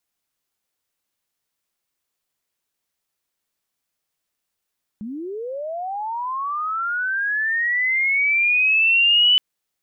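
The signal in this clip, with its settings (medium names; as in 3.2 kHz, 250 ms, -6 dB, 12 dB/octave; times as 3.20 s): sweep linear 200 Hz -> 3 kHz -28 dBFS -> -11.5 dBFS 4.37 s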